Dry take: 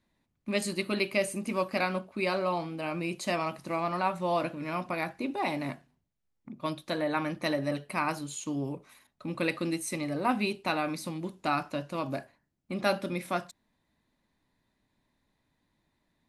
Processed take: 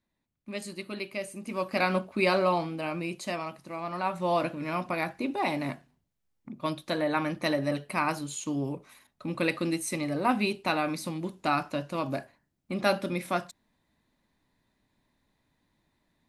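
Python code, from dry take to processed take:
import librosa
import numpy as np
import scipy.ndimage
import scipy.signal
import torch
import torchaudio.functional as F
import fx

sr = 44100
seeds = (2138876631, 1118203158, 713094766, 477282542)

y = fx.gain(x, sr, db=fx.line((1.33, -7.0), (1.94, 5.0), (2.44, 5.0), (3.71, -6.5), (4.27, 2.0)))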